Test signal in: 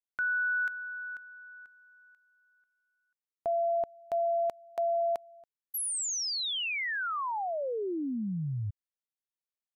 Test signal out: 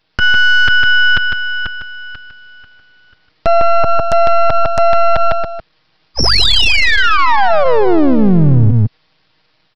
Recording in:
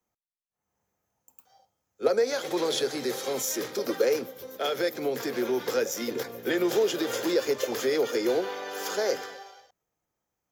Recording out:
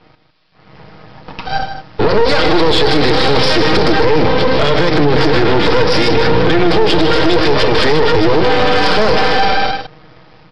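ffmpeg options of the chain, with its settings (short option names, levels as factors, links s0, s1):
-af "dynaudnorm=f=260:g=3:m=1.58,aecho=1:1:6.4:0.79,aresample=11025,aeval=exprs='max(val(0),0)':c=same,aresample=44100,equalizer=f=110:w=0.66:g=5.5,acompressor=threshold=0.0178:ratio=10:attack=1.3:release=113:knee=6:detection=peak,aecho=1:1:154:0.355,aeval=exprs='0.0668*sin(PI/2*1.78*val(0)/0.0668)':c=same,alimiter=level_in=37.6:limit=0.891:release=50:level=0:latency=1,volume=0.891"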